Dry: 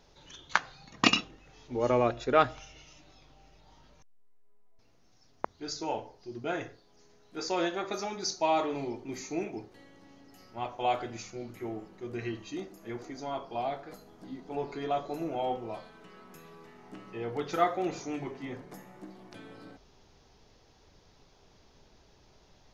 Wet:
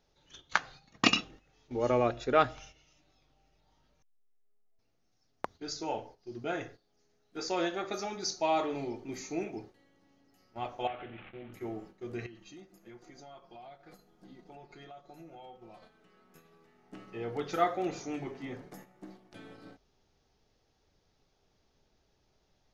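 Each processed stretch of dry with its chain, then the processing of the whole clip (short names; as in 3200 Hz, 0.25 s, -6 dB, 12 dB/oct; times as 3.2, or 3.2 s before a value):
10.87–11.53 CVSD 16 kbps + high shelf 2400 Hz +6 dB + compressor 2:1, threshold -43 dBFS
12.26–15.82 comb 5.6 ms, depth 50% + dynamic EQ 430 Hz, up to -4 dB, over -43 dBFS, Q 0.93 + compressor 8:1, threshold -45 dBFS
whole clip: gate -49 dBFS, range -10 dB; notch 1000 Hz, Q 12; gain -1.5 dB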